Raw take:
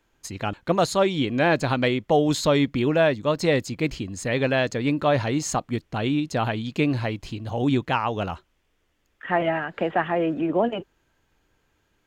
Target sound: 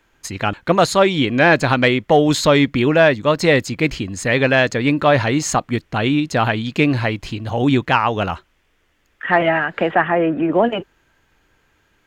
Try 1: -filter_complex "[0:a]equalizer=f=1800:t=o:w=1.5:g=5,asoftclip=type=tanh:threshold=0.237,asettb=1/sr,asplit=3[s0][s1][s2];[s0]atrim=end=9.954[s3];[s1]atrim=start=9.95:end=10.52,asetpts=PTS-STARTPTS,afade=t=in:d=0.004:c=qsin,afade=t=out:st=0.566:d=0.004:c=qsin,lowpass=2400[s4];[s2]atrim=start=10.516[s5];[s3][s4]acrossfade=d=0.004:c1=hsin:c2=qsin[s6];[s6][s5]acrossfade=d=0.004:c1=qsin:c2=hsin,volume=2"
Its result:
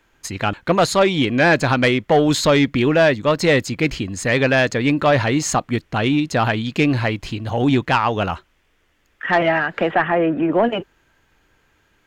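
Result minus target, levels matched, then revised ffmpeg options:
saturation: distortion +13 dB
-filter_complex "[0:a]equalizer=f=1800:t=o:w=1.5:g=5,asoftclip=type=tanh:threshold=0.631,asettb=1/sr,asplit=3[s0][s1][s2];[s0]atrim=end=9.954[s3];[s1]atrim=start=9.95:end=10.52,asetpts=PTS-STARTPTS,afade=t=in:d=0.004:c=qsin,afade=t=out:st=0.566:d=0.004:c=qsin,lowpass=2400[s4];[s2]atrim=start=10.516[s5];[s3][s4]acrossfade=d=0.004:c1=hsin:c2=qsin[s6];[s6][s5]acrossfade=d=0.004:c1=qsin:c2=hsin,volume=2"

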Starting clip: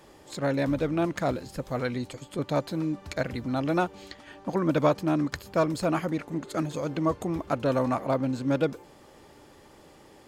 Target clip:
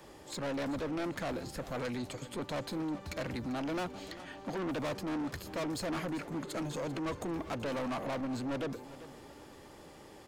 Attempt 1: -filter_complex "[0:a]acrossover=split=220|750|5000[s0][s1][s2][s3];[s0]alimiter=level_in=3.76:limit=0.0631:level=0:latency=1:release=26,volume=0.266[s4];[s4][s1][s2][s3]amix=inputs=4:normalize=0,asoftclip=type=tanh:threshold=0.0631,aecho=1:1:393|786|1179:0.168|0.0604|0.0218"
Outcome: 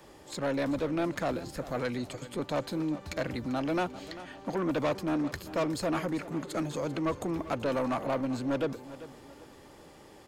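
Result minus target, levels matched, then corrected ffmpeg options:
saturation: distortion -6 dB
-filter_complex "[0:a]acrossover=split=220|750|5000[s0][s1][s2][s3];[s0]alimiter=level_in=3.76:limit=0.0631:level=0:latency=1:release=26,volume=0.266[s4];[s4][s1][s2][s3]amix=inputs=4:normalize=0,asoftclip=type=tanh:threshold=0.0224,aecho=1:1:393|786|1179:0.168|0.0604|0.0218"

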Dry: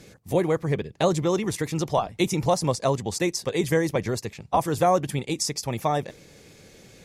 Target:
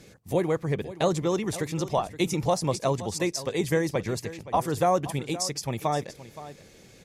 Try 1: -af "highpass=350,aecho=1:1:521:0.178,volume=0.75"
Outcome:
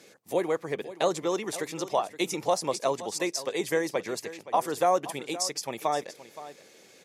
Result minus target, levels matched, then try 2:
250 Hz band -3.5 dB
-af "aecho=1:1:521:0.178,volume=0.75"

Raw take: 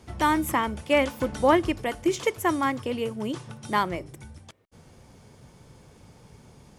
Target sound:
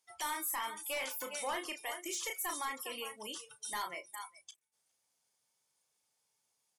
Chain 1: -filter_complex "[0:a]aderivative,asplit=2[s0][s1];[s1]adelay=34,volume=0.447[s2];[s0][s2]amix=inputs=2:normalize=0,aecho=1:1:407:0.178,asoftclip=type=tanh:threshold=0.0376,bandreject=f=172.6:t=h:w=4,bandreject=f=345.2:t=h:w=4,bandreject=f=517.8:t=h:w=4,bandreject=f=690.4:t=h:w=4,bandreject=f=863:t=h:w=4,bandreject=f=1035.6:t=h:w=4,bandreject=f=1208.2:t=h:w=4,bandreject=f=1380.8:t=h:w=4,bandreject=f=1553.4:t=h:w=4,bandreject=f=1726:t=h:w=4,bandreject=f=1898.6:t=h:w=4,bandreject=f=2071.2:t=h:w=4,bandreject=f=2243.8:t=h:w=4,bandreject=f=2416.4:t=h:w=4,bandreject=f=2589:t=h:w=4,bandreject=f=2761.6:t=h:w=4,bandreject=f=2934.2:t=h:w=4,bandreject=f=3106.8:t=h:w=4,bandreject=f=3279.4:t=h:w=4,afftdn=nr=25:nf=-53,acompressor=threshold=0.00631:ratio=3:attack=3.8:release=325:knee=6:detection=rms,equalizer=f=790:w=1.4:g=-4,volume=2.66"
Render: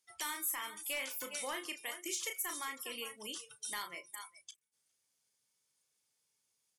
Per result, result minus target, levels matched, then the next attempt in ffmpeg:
saturation: distortion -9 dB; 1 kHz band -5.0 dB
-filter_complex "[0:a]aderivative,asplit=2[s0][s1];[s1]adelay=34,volume=0.447[s2];[s0][s2]amix=inputs=2:normalize=0,aecho=1:1:407:0.178,asoftclip=type=tanh:threshold=0.0112,bandreject=f=172.6:t=h:w=4,bandreject=f=345.2:t=h:w=4,bandreject=f=517.8:t=h:w=4,bandreject=f=690.4:t=h:w=4,bandreject=f=863:t=h:w=4,bandreject=f=1035.6:t=h:w=4,bandreject=f=1208.2:t=h:w=4,bandreject=f=1380.8:t=h:w=4,bandreject=f=1553.4:t=h:w=4,bandreject=f=1726:t=h:w=4,bandreject=f=1898.6:t=h:w=4,bandreject=f=2071.2:t=h:w=4,bandreject=f=2243.8:t=h:w=4,bandreject=f=2416.4:t=h:w=4,bandreject=f=2589:t=h:w=4,bandreject=f=2761.6:t=h:w=4,bandreject=f=2934.2:t=h:w=4,bandreject=f=3106.8:t=h:w=4,bandreject=f=3279.4:t=h:w=4,afftdn=nr=25:nf=-53,acompressor=threshold=0.00631:ratio=3:attack=3.8:release=325:knee=6:detection=rms,equalizer=f=790:w=1.4:g=-4,volume=2.66"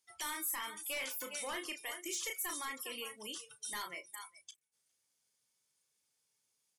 1 kHz band -4.5 dB
-filter_complex "[0:a]aderivative,asplit=2[s0][s1];[s1]adelay=34,volume=0.447[s2];[s0][s2]amix=inputs=2:normalize=0,aecho=1:1:407:0.178,asoftclip=type=tanh:threshold=0.0112,bandreject=f=172.6:t=h:w=4,bandreject=f=345.2:t=h:w=4,bandreject=f=517.8:t=h:w=4,bandreject=f=690.4:t=h:w=4,bandreject=f=863:t=h:w=4,bandreject=f=1035.6:t=h:w=4,bandreject=f=1208.2:t=h:w=4,bandreject=f=1380.8:t=h:w=4,bandreject=f=1553.4:t=h:w=4,bandreject=f=1726:t=h:w=4,bandreject=f=1898.6:t=h:w=4,bandreject=f=2071.2:t=h:w=4,bandreject=f=2243.8:t=h:w=4,bandreject=f=2416.4:t=h:w=4,bandreject=f=2589:t=h:w=4,bandreject=f=2761.6:t=h:w=4,bandreject=f=2934.2:t=h:w=4,bandreject=f=3106.8:t=h:w=4,bandreject=f=3279.4:t=h:w=4,afftdn=nr=25:nf=-53,acompressor=threshold=0.00631:ratio=3:attack=3.8:release=325:knee=6:detection=rms,equalizer=f=790:w=1.4:g=4.5,volume=2.66"

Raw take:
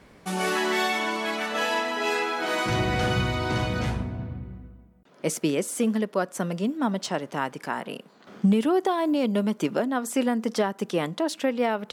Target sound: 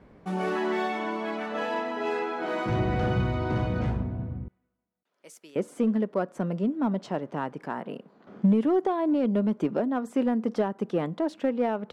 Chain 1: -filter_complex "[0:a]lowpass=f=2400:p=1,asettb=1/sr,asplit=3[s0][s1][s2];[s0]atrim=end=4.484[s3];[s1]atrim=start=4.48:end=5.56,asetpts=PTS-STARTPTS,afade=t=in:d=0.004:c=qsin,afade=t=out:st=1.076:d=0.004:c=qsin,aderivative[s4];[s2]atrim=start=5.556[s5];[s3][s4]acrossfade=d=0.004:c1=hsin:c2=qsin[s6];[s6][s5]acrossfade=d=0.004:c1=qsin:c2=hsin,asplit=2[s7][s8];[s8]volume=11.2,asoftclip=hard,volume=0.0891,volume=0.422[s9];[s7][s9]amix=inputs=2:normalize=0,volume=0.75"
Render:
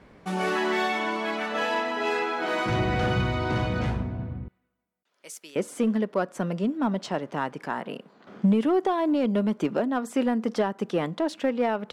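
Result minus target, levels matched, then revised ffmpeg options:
2 kHz band +4.5 dB
-filter_complex "[0:a]lowpass=f=760:p=1,asettb=1/sr,asplit=3[s0][s1][s2];[s0]atrim=end=4.484[s3];[s1]atrim=start=4.48:end=5.56,asetpts=PTS-STARTPTS,afade=t=in:d=0.004:c=qsin,afade=t=out:st=1.076:d=0.004:c=qsin,aderivative[s4];[s2]atrim=start=5.556[s5];[s3][s4]acrossfade=d=0.004:c1=hsin:c2=qsin[s6];[s6][s5]acrossfade=d=0.004:c1=qsin:c2=hsin,asplit=2[s7][s8];[s8]volume=11.2,asoftclip=hard,volume=0.0891,volume=0.422[s9];[s7][s9]amix=inputs=2:normalize=0,volume=0.75"

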